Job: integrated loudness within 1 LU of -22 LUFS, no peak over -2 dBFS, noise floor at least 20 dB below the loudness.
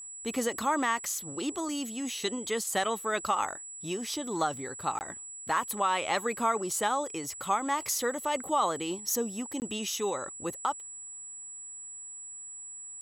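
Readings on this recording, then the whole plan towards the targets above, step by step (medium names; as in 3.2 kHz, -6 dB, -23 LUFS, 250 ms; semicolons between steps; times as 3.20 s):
dropouts 2; longest dropout 19 ms; steady tone 7.8 kHz; tone level -41 dBFS; loudness -31.5 LUFS; peak level -16.0 dBFS; loudness target -22.0 LUFS
-> interpolate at 4.99/9.60 s, 19 ms; band-stop 7.8 kHz, Q 30; trim +9.5 dB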